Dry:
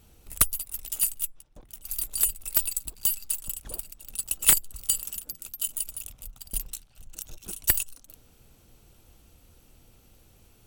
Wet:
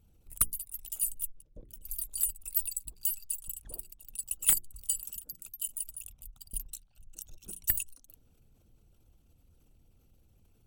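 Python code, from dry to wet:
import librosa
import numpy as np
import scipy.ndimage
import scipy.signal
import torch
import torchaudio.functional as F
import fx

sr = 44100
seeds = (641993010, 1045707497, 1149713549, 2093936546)

y = fx.envelope_sharpen(x, sr, power=1.5)
y = fx.low_shelf_res(y, sr, hz=640.0, db=6.5, q=3.0, at=(1.01, 1.95))
y = fx.hum_notches(y, sr, base_hz=60, count=7)
y = y * librosa.db_to_amplitude(-6.0)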